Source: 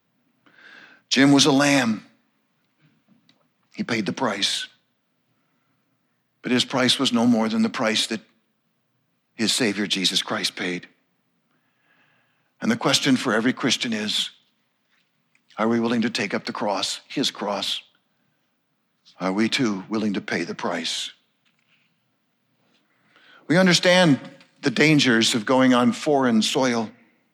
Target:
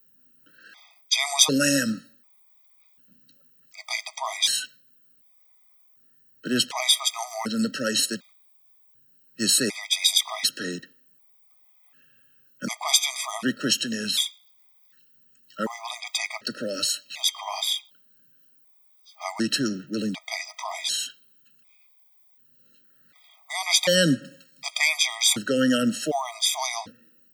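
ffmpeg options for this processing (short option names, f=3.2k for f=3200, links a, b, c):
-filter_complex "[0:a]asettb=1/sr,asplit=3[a][b][c];[a]atrim=end=17.214[d];[b]atrim=start=17.21:end=17.76,asetpts=PTS-STARTPTS,afade=t=in:d=0.004:c=qsin,afade=t=out:st=0.546:d=0.004:c=qsin,aeval=exprs='val(0)+0.02*sin(2*PI*3200*n/s)':c=same[e];[c]atrim=start=17.756[f];[d][e]acrossfade=d=0.004:c1=hsin:c2=qsin[g];[g][f]acrossfade=d=0.004:c1=qsin:c2=hsin,aemphasis=mode=production:type=75fm,afftfilt=real='re*gt(sin(2*PI*0.67*pts/sr)*(1-2*mod(floor(b*sr/1024/640),2)),0)':imag='im*gt(sin(2*PI*0.67*pts/sr)*(1-2*mod(floor(b*sr/1024/640),2)),0)':win_size=1024:overlap=0.75,volume=-3dB"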